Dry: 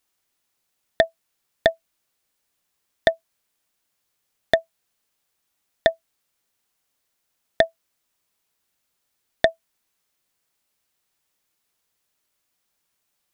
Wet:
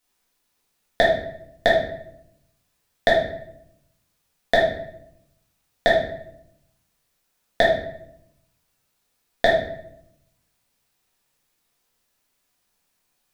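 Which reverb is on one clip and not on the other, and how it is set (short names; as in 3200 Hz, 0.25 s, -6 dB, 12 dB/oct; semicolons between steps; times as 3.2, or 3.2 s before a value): shoebox room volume 170 m³, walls mixed, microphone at 1.9 m; gain -2.5 dB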